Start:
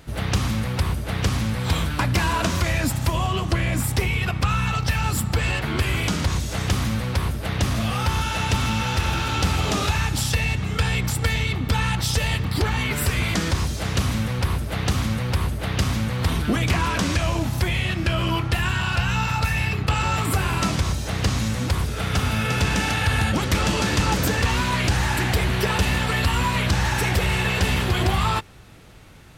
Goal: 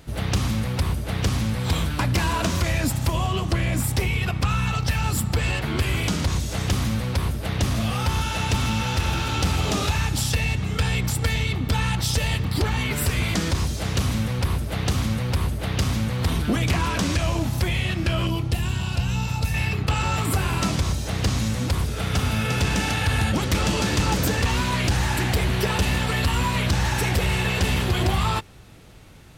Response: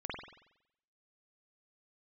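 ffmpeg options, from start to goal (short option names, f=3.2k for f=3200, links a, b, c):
-af "asetnsamples=n=441:p=0,asendcmd='18.27 equalizer g -13.5;19.54 equalizer g -3',equalizer=f=1.5k:w=0.81:g=-3,volume=15dB,asoftclip=hard,volume=-15dB"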